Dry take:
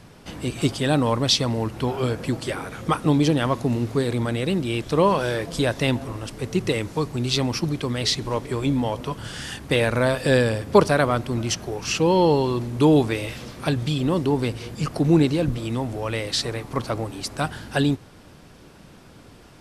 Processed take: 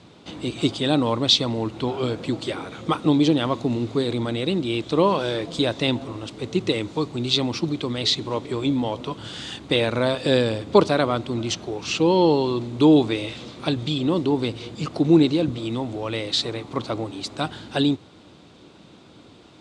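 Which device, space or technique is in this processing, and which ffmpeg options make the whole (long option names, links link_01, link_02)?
car door speaker: -af "highpass=97,equalizer=frequency=140:width_type=q:width=4:gain=-3,equalizer=frequency=320:width_type=q:width=4:gain=5,equalizer=frequency=1700:width_type=q:width=4:gain=-6,equalizer=frequency=3700:width_type=q:width=4:gain=8,equalizer=frequency=5500:width_type=q:width=4:gain=-5,lowpass=frequency=7600:width=0.5412,lowpass=frequency=7600:width=1.3066,volume=-1dB"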